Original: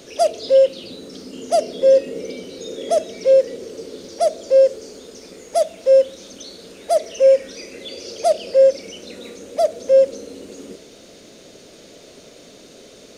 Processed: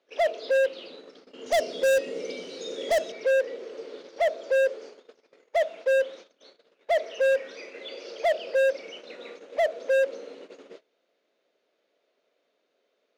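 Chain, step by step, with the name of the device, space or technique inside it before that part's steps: walkie-talkie (band-pass 560–2500 Hz; hard clipper -19.5 dBFS, distortion -9 dB; gate -43 dBFS, range -24 dB); 1.46–3.12 s: tone controls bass +10 dB, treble +14 dB

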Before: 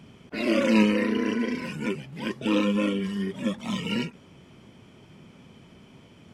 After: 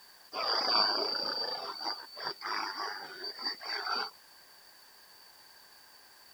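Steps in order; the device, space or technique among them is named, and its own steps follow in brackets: 2.43–3.24 s: high-pass 850 Hz 6 dB/octave; split-band scrambled radio (four frequency bands reordered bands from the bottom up 2341; band-pass 340–2800 Hz; white noise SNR 25 dB)

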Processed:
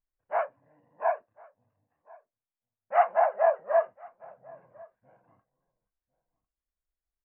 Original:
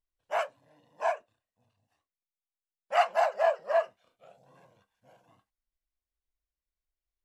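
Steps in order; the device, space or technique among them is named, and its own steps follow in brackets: shout across a valley (distance through air 250 m; echo from a far wall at 180 m, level -21 dB); dynamic bell 770 Hz, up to +4 dB, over -33 dBFS, Q 1.3; steep low-pass 2.2 kHz 36 dB/octave

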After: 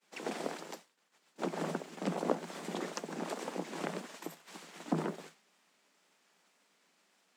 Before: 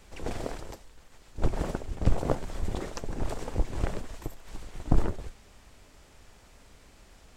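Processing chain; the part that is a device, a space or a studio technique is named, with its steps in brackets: noise-reduction cassette on a plain deck (tape noise reduction on one side only encoder only; wow and flutter; white noise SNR 39 dB); Chebyshev high-pass 160 Hz, order 10; expander -41 dBFS; treble shelf 7.2 kHz -5 dB; trim -2 dB

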